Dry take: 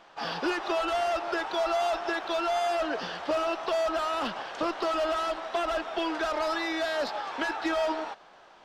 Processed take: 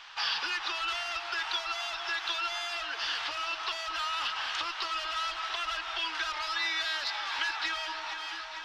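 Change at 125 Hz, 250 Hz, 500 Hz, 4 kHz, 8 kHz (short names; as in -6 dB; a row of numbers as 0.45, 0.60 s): under -10 dB, -21.0 dB, -19.0 dB, +5.5 dB, +1.5 dB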